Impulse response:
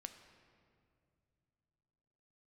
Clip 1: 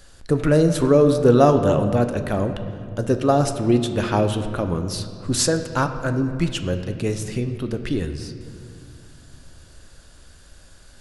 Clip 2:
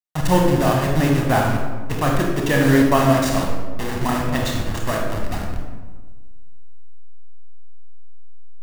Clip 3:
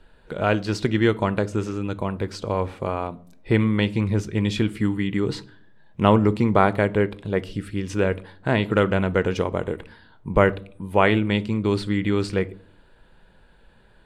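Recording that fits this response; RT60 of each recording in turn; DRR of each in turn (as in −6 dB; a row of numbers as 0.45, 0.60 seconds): 1; non-exponential decay, 1.3 s, non-exponential decay; 7.0, −0.5, 14.5 decibels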